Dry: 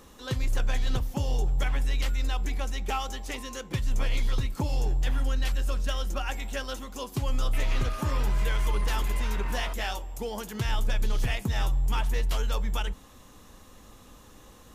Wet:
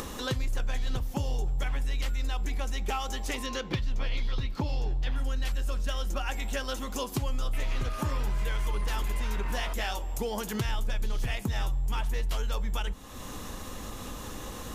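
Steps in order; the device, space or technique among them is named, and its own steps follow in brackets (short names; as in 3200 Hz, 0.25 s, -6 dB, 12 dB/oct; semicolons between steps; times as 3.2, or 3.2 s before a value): 3.46–5.16 resonant high shelf 6100 Hz -11 dB, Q 1.5; upward and downward compression (upward compressor, threshold -37 dBFS; compressor 3:1, threshold -36 dBFS, peak gain reduction 10.5 dB); gain +6.5 dB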